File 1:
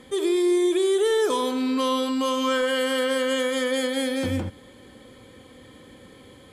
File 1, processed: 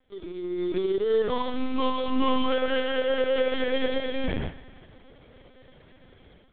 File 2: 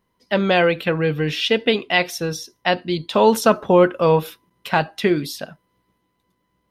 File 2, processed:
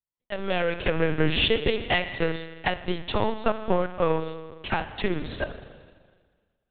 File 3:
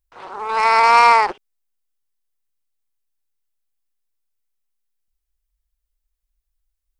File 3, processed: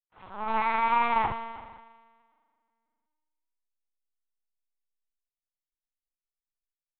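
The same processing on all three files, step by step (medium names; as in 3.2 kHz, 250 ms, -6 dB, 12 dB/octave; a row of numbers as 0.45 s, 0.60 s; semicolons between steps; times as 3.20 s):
compression 12:1, threshold -23 dBFS; waveshaping leveller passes 1; level rider gain up to 10 dB; spring tank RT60 2.3 s, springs 38 ms, chirp 40 ms, DRR 5.5 dB; power-law waveshaper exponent 1.4; LPC vocoder at 8 kHz pitch kept; normalise loudness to -27 LUFS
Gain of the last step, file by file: -8.5 dB, -4.5 dB, -8.5 dB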